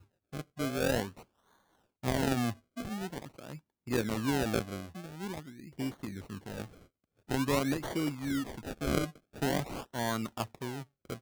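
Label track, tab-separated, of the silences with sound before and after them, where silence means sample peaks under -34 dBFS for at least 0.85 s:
1.070000	2.040000	silence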